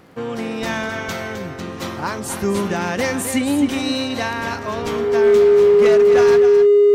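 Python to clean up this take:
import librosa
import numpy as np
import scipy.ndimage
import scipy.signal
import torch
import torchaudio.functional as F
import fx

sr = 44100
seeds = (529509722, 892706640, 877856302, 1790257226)

y = fx.fix_declip(x, sr, threshold_db=-8.5)
y = fx.fix_declick_ar(y, sr, threshold=6.5)
y = fx.notch(y, sr, hz=410.0, q=30.0)
y = fx.fix_echo_inverse(y, sr, delay_ms=261, level_db=-9.5)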